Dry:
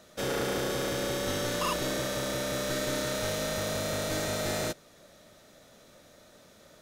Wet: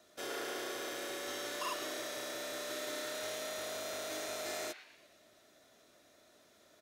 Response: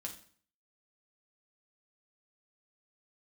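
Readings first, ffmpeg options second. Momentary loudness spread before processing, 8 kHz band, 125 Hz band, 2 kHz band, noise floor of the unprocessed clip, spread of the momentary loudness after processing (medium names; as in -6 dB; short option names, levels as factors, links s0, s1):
2 LU, -7.5 dB, -27.0 dB, -7.0 dB, -57 dBFS, 2 LU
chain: -filter_complex "[0:a]highpass=f=200:p=1,aecho=1:1:2.9:0.45,acrossover=split=310|1100|3700[s0][s1][s2][s3];[s0]acompressor=threshold=0.002:ratio=5[s4];[s2]asplit=7[s5][s6][s7][s8][s9][s10][s11];[s6]adelay=117,afreqshift=140,volume=0.501[s12];[s7]adelay=234,afreqshift=280,volume=0.234[s13];[s8]adelay=351,afreqshift=420,volume=0.111[s14];[s9]adelay=468,afreqshift=560,volume=0.0519[s15];[s10]adelay=585,afreqshift=700,volume=0.0245[s16];[s11]adelay=702,afreqshift=840,volume=0.0115[s17];[s5][s12][s13][s14][s15][s16][s17]amix=inputs=7:normalize=0[s18];[s4][s1][s18][s3]amix=inputs=4:normalize=0,volume=0.376"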